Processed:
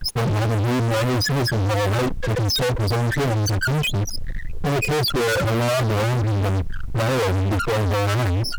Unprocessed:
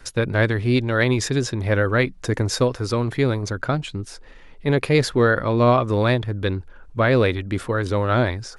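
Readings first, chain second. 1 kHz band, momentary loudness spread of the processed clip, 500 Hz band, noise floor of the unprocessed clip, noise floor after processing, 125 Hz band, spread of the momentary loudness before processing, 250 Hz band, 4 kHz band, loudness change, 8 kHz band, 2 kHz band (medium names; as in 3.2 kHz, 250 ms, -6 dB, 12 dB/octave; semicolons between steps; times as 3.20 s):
0.0 dB, 4 LU, -2.5 dB, -43 dBFS, -27 dBFS, +2.0 dB, 8 LU, -2.5 dB, +5.0 dB, -0.5 dB, +3.0 dB, -1.5 dB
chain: loudest bins only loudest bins 4; fuzz box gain 47 dB, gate -50 dBFS; added noise pink -52 dBFS; trim -6 dB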